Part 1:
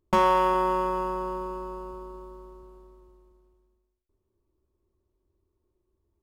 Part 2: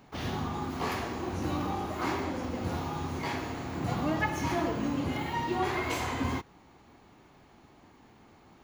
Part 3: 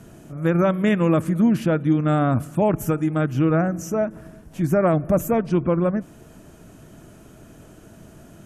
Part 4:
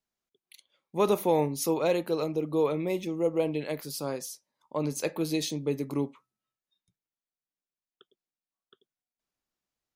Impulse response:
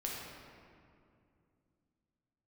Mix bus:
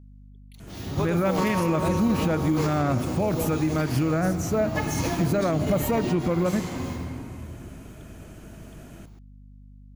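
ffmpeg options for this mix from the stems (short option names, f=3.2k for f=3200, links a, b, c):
-filter_complex "[0:a]adelay=1250,volume=-5dB[a];[1:a]bass=f=250:g=8,treble=f=4k:g=13,adelay=550,volume=-4.5dB,asplit=2[b][c];[c]volume=-3.5dB[d];[2:a]equalizer=f=2.3k:w=2.3:g=5.5,adelay=600,volume=-1dB,asplit=2[e][f];[f]volume=-16dB[g];[3:a]aeval=exprs='val(0)+0.00794*(sin(2*PI*50*n/s)+sin(2*PI*2*50*n/s)/2+sin(2*PI*3*50*n/s)/3+sin(2*PI*4*50*n/s)/4+sin(2*PI*5*50*n/s)/5)':c=same,volume=-4dB,asplit=2[h][i];[i]apad=whole_len=405224[j];[b][j]sidechaingate=range=-33dB:threshold=-39dB:ratio=16:detection=peak[k];[4:a]atrim=start_sample=2205[l];[d][g]amix=inputs=2:normalize=0[m];[m][l]afir=irnorm=-1:irlink=0[n];[a][k][e][h][n]amix=inputs=5:normalize=0,alimiter=limit=-14.5dB:level=0:latency=1:release=69"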